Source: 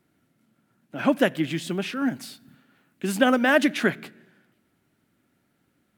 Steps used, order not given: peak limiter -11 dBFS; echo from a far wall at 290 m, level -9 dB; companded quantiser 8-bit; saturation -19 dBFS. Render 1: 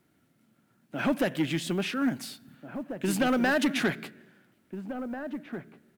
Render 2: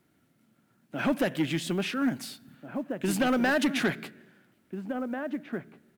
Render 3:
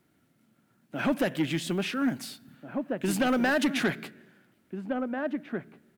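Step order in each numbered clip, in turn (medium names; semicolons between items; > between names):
peak limiter > saturation > echo from a far wall > companded quantiser; peak limiter > echo from a far wall > saturation > companded quantiser; companded quantiser > echo from a far wall > peak limiter > saturation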